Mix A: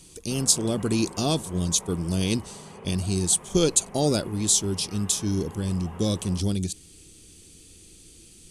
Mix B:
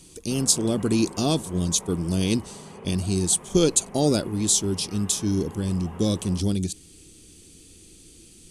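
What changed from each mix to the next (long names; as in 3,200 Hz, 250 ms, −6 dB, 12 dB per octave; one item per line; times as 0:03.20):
master: add parametric band 280 Hz +3.5 dB 1.2 octaves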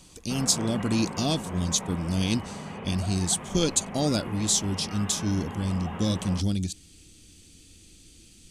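background +9.0 dB
master: add graphic EQ with 15 bands 160 Hz −3 dB, 400 Hz −10 dB, 1,000 Hz −4 dB, 10,000 Hz −8 dB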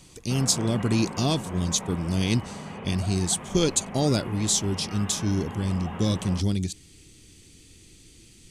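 speech: add thirty-one-band graphic EQ 125 Hz +9 dB, 400 Hz +7 dB, 1,000 Hz +7 dB, 2,000 Hz +7 dB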